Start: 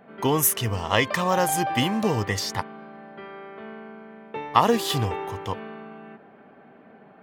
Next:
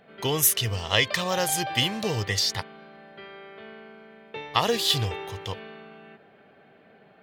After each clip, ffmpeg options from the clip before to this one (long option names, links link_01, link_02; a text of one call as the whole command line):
ffmpeg -i in.wav -af "equalizer=frequency=250:width_type=o:width=1:gain=-9,equalizer=frequency=1000:width_type=o:width=1:gain=-8,equalizer=frequency=4000:width_type=o:width=1:gain=8" out.wav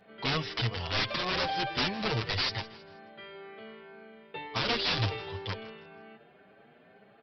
ffmpeg -i in.wav -filter_complex "[0:a]aresample=11025,aeval=exprs='(mod(10*val(0)+1,2)-1)/10':channel_layout=same,aresample=44100,aecho=1:1:161|322|483:0.126|0.0466|0.0172,asplit=2[link_01][link_02];[link_02]adelay=7.3,afreqshift=2[link_03];[link_01][link_03]amix=inputs=2:normalize=1" out.wav